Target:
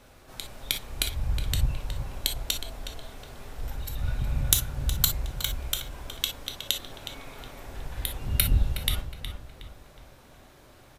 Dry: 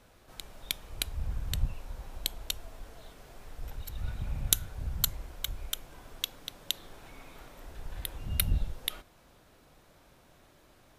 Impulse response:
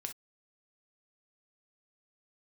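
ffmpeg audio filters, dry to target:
-filter_complex "[0:a]acontrast=43,asplit=2[s0][s1];[s1]adelay=366,lowpass=f=3400:p=1,volume=0.398,asplit=2[s2][s3];[s3]adelay=366,lowpass=f=3400:p=1,volume=0.41,asplit=2[s4][s5];[s5]adelay=366,lowpass=f=3400:p=1,volume=0.41,asplit=2[s6][s7];[s7]adelay=366,lowpass=f=3400:p=1,volume=0.41,asplit=2[s8][s9];[s9]adelay=366,lowpass=f=3400:p=1,volume=0.41[s10];[s0][s2][s4][s6][s8][s10]amix=inputs=6:normalize=0[s11];[1:a]atrim=start_sample=2205[s12];[s11][s12]afir=irnorm=-1:irlink=0,volume=1.33"

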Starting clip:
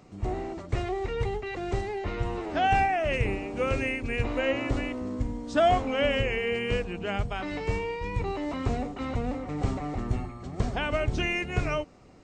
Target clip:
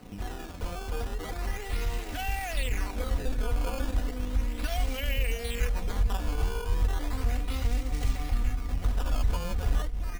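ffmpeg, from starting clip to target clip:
-filter_complex "[0:a]bandreject=f=60:t=h:w=6,bandreject=f=120:t=h:w=6,bandreject=f=180:t=h:w=6,acrossover=split=150[s0][s1];[s1]acrusher=bits=4:mode=log:mix=0:aa=0.000001[s2];[s0][s2]amix=inputs=2:normalize=0,alimiter=limit=0.0841:level=0:latency=1:release=19,lowshelf=f=170:g=11,asplit=2[s3][s4];[s4]adelay=807,lowpass=f=3600:p=1,volume=0.178,asplit=2[s5][s6];[s6]adelay=807,lowpass=f=3600:p=1,volume=0.31,asplit=2[s7][s8];[s8]adelay=807,lowpass=f=3600:p=1,volume=0.31[s9];[s5][s7][s9]amix=inputs=3:normalize=0[s10];[s3][s10]amix=inputs=2:normalize=0,acrossover=split=94|1900[s11][s12][s13];[s11]acompressor=threshold=0.00447:ratio=4[s14];[s12]acompressor=threshold=0.00562:ratio=4[s15];[s13]acompressor=threshold=0.01:ratio=4[s16];[s14][s15][s16]amix=inputs=3:normalize=0,acrusher=samples=13:mix=1:aa=0.000001:lfo=1:lforange=20.8:lforate=0.29,aecho=1:1:4.1:0.54,atempo=1.2,asubboost=boost=5.5:cutoff=80,aeval=exprs='sgn(val(0))*max(abs(val(0))-0.00141,0)':c=same,volume=1.68"

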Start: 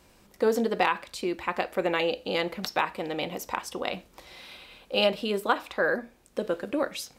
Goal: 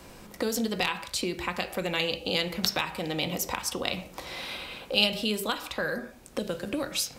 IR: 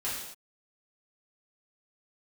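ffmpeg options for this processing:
-filter_complex "[0:a]asplit=2[s0][s1];[1:a]atrim=start_sample=2205,asetrate=70560,aresample=44100,lowpass=2100[s2];[s1][s2]afir=irnorm=-1:irlink=0,volume=0.447[s3];[s0][s3]amix=inputs=2:normalize=0,acrossover=split=140|3000[s4][s5][s6];[s5]acompressor=threshold=0.00891:ratio=5[s7];[s4][s7][s6]amix=inputs=3:normalize=0,volume=2.82"

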